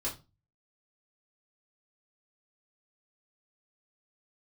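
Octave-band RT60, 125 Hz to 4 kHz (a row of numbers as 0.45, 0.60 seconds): 0.55, 0.35, 0.30, 0.25, 0.20, 0.25 seconds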